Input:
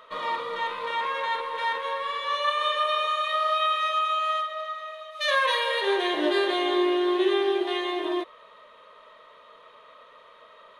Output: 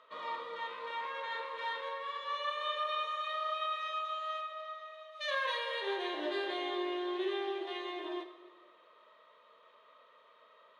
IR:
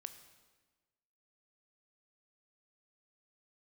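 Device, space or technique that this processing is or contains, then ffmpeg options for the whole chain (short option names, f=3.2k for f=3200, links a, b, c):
supermarket ceiling speaker: -filter_complex "[0:a]highpass=200,lowpass=6.5k[a];[1:a]atrim=start_sample=2205[b];[a][b]afir=irnorm=-1:irlink=0,asettb=1/sr,asplit=3[c][d][e];[c]atrim=end=1.264[f];[d]atrim=start=1.26:end=1.89,asetpts=PTS-STARTPTS,afade=t=in:d=0.004:c=qsin,afade=t=out:st=0.626:d=0.004:c=qsin,asplit=2[g][h];[h]adelay=42,volume=-3dB[i];[g][i]amix=inputs=2:normalize=0,atrim=end_sample=27783[j];[e]atrim=start=1.886[k];[f][j]acrossfade=d=0.004:c1=hsin:c2=qsin[l];[l][k]acrossfade=d=0.004:c1=qsin:c2=hsin,volume=-6dB"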